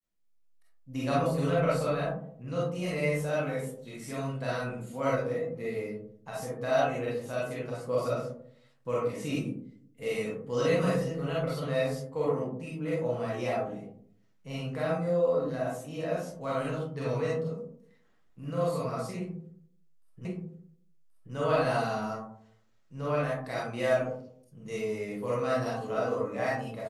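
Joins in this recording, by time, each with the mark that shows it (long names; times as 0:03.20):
0:20.25: the same again, the last 1.08 s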